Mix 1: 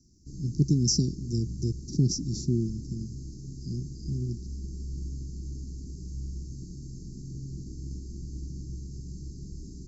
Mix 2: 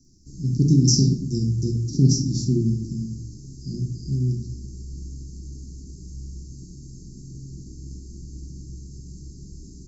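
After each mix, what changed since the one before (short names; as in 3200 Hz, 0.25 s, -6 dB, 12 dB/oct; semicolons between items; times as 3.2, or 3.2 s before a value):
background: remove air absorption 55 m; reverb: on, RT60 0.55 s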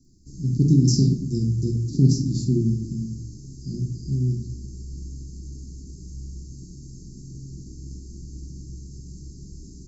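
speech: add bell 5700 Hz -11 dB 0.27 oct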